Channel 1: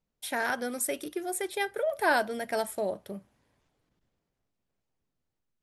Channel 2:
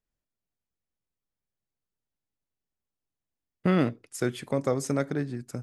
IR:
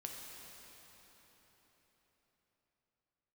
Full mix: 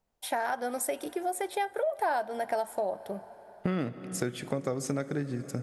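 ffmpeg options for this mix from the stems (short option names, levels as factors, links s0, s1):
-filter_complex "[0:a]equalizer=f=790:w=1.2:g=12.5,volume=0.841,asplit=2[s0][s1];[s1]volume=0.141[s2];[1:a]bandreject=f=990:w=12,volume=1.12,asplit=2[s3][s4];[s4]volume=0.299[s5];[2:a]atrim=start_sample=2205[s6];[s2][s5]amix=inputs=2:normalize=0[s7];[s7][s6]afir=irnorm=-1:irlink=0[s8];[s0][s3][s8]amix=inputs=3:normalize=0,acompressor=threshold=0.0398:ratio=4"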